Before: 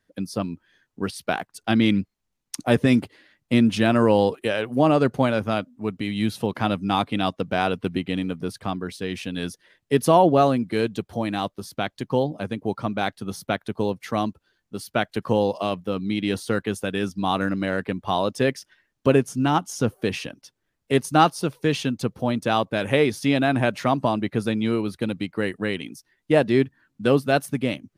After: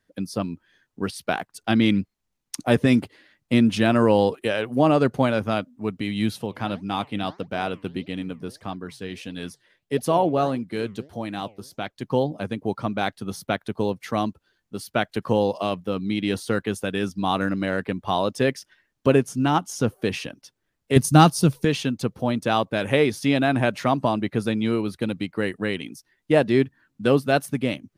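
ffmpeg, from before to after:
ffmpeg -i in.wav -filter_complex "[0:a]asplit=3[link_01][link_02][link_03];[link_01]afade=type=out:start_time=6.37:duration=0.02[link_04];[link_02]flanger=delay=1.2:depth=9.4:regen=85:speed=1.6:shape=triangular,afade=type=in:start_time=6.37:duration=0.02,afade=type=out:start_time=12.01:duration=0.02[link_05];[link_03]afade=type=in:start_time=12.01:duration=0.02[link_06];[link_04][link_05][link_06]amix=inputs=3:normalize=0,asettb=1/sr,asplit=3[link_07][link_08][link_09];[link_07]atrim=end=20.964[link_10];[link_08]atrim=start=20.96:end=21.65,asetpts=PTS-STARTPTS,afade=type=in:duration=0.004:curve=qsin,afade=type=out:start_time=0.686:duration=0.004:curve=qsin,bass=frequency=250:gain=13,treble=frequency=4000:gain=8[link_11];[link_09]atrim=start=21.646[link_12];[link_10][link_11]acrossfade=duration=0.004:curve1=hsin:curve2=qsin[link_13];[link_13][link_12]acrossfade=duration=0.004:curve1=qsin:curve2=hsin" out.wav

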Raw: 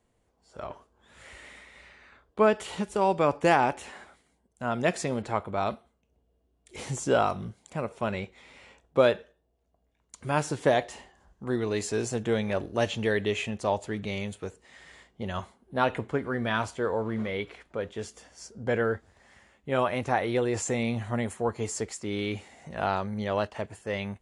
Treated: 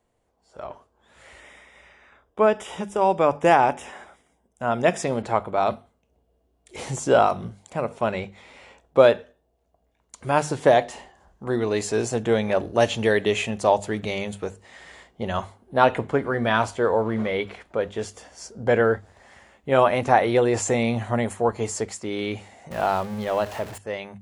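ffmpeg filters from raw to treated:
ffmpeg -i in.wav -filter_complex "[0:a]asettb=1/sr,asplit=3[link_01][link_02][link_03];[link_01]atrim=end=1.404[link_04];[link_02]atrim=start=1.4:end=5.03,asetpts=PTS-STARTPTS,afade=type=in:duration=0.004:curve=qsin,afade=type=out:start_time=3.626:duration=0.004:curve=qsin,asuperstop=centerf=4300:order=12:qfactor=5.3[link_05];[link_03]atrim=start=5.026[link_06];[link_04][link_05]acrossfade=duration=0.004:curve1=hsin:curve2=qsin[link_07];[link_07][link_06]acrossfade=duration=0.004:curve1=qsin:curve2=hsin,asettb=1/sr,asplit=3[link_08][link_09][link_10];[link_08]atrim=end=12.804[link_11];[link_09]atrim=start=12.8:end=14.13,asetpts=PTS-STARTPTS,afade=type=in:duration=0.004:curve=qsin,afade=type=out:start_time=1.326:duration=0.004:curve=qsin,highshelf=frequency=7200:gain=6.5[link_12];[link_10]atrim=start=14.126[link_13];[link_11][link_12]acrossfade=duration=0.004:curve1=hsin:curve2=qsin[link_14];[link_14][link_13]acrossfade=duration=0.004:curve1=qsin:curve2=hsin,asettb=1/sr,asplit=3[link_15][link_16][link_17];[link_15]atrim=end=22.714[link_18];[link_16]atrim=start=22.71:end=23.78,asetpts=PTS-STARTPTS,afade=type=in:duration=0.004:curve=qsin,afade=type=out:start_time=1.066:duration=0.004:curve=qsin,aeval=exprs='val(0)+0.5*0.0188*sgn(val(0))':channel_layout=same[link_19];[link_17]atrim=start=23.776[link_20];[link_18][link_19]acrossfade=duration=0.004:curve1=hsin:curve2=qsin[link_21];[link_21][link_20]acrossfade=duration=0.004:curve1=qsin:curve2=hsin,equalizer=frequency=710:width=1.1:gain=4.5,bandreject=frequency=50:width_type=h:width=6,bandreject=frequency=100:width_type=h:width=6,bandreject=frequency=150:width_type=h:width=6,bandreject=frequency=200:width_type=h:width=6,bandreject=frequency=250:width_type=h:width=6,dynaudnorm=framelen=720:gausssize=9:maxgain=11.5dB,volume=-1dB" out.wav

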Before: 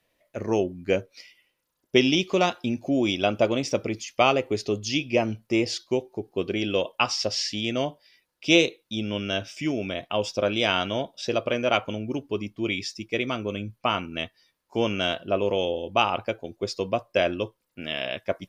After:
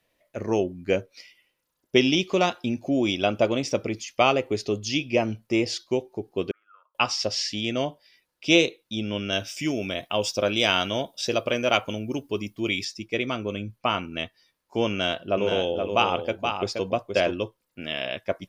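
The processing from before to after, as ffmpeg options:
ffmpeg -i in.wav -filter_complex "[0:a]asettb=1/sr,asplit=3[link_01][link_02][link_03];[link_01]atrim=end=6.514[link_04];[link_02]atrim=start=6.51:end=6.95,asetpts=PTS-STARTPTS,afade=type=in:duration=0.004:curve=qsin,afade=type=out:start_time=0.436:duration=0.004:curve=qsin,asuperpass=centerf=1300:order=4:qfactor=7.5[link_05];[link_03]atrim=start=6.946[link_06];[link_04][link_05]acrossfade=duration=0.004:curve1=hsin:curve2=qsin[link_07];[link_07][link_06]acrossfade=duration=0.004:curve1=qsin:curve2=hsin,asettb=1/sr,asplit=3[link_08][link_09][link_10];[link_08]atrim=end=9.324[link_11];[link_09]atrim=start=9.32:end=12.85,asetpts=PTS-STARTPTS,afade=type=in:duration=0.004:curve=qsin,afade=type=out:start_time=3.526:duration=0.004:curve=qsin,aemphasis=mode=production:type=50kf[link_12];[link_10]atrim=start=12.846[link_13];[link_11][link_12]acrossfade=duration=0.004:curve1=hsin:curve2=qsin[link_14];[link_14][link_13]acrossfade=duration=0.004:curve1=qsin:curve2=hsin,asettb=1/sr,asplit=3[link_15][link_16][link_17];[link_15]atrim=end=14.904[link_18];[link_16]atrim=start=14.9:end=17.33,asetpts=PTS-STARTPTS,afade=type=in:duration=0.004:curve=qsin,afade=type=out:start_time=2.426:duration=0.004:curve=qsin,aecho=1:1:474:0.531,atrim=end_sample=107163[link_19];[link_17]atrim=start=17.326[link_20];[link_18][link_19]acrossfade=duration=0.004:curve1=hsin:curve2=qsin[link_21];[link_21][link_20]acrossfade=duration=0.004:curve1=qsin:curve2=hsin" out.wav

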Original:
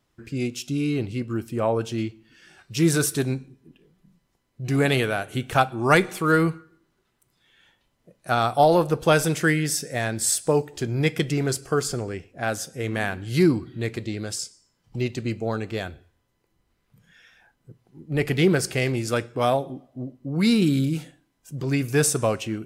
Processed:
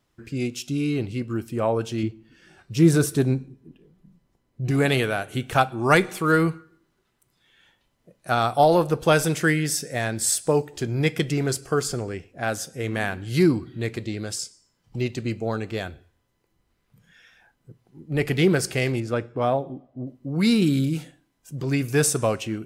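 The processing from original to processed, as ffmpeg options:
ffmpeg -i in.wav -filter_complex "[0:a]asettb=1/sr,asplit=3[link_01][link_02][link_03];[link_01]atrim=end=2.034[link_04];[link_02]atrim=start=2.03:end=4.71,asetpts=PTS-STARTPTS,afade=type=in:duration=0.004:curve=qsin,afade=type=out:start_time=2.676:duration=0.004:curve=qsin,tiltshelf=frequency=910:gain=4.5[link_05];[link_03]atrim=start=4.706[link_06];[link_04][link_05]acrossfade=duration=0.004:curve1=hsin:curve2=qsin[link_07];[link_07][link_06]acrossfade=duration=0.004:curve1=qsin:curve2=hsin,asettb=1/sr,asplit=3[link_08][link_09][link_10];[link_08]atrim=end=19.004[link_11];[link_09]atrim=start=19:end=20.07,asetpts=PTS-STARTPTS,afade=type=in:duration=0.004:curve=qsin,afade=type=out:start_time=1.066:duration=0.004:curve=qsin,lowpass=frequency=1300:poles=1[link_12];[link_10]atrim=start=20.066[link_13];[link_11][link_12]acrossfade=duration=0.004:curve1=hsin:curve2=qsin[link_14];[link_14][link_13]acrossfade=duration=0.004:curve1=qsin:curve2=hsin" out.wav

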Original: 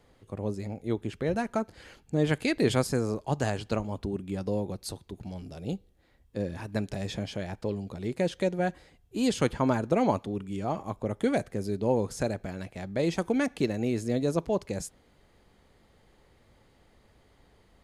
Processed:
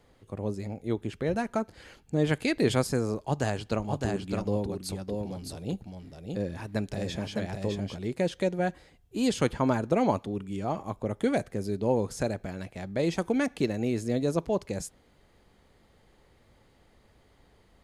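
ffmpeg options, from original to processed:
ffmpeg -i in.wav -filter_complex "[0:a]asettb=1/sr,asplit=3[link_01][link_02][link_03];[link_01]atrim=end=3.214[link_04];[link_02]atrim=start=3.21:end=7.97,asetpts=PTS-STARTPTS,afade=type=in:duration=0.004:curve=qsin,afade=type=out:start_time=4.756:duration=0.004:curve=qsin,aecho=1:1:610:0.631,atrim=end_sample=209916[link_05];[link_03]atrim=start=7.966[link_06];[link_04][link_05]acrossfade=duration=0.004:curve1=hsin:curve2=qsin[link_07];[link_07][link_06]acrossfade=duration=0.004:curve1=qsin:curve2=hsin" out.wav

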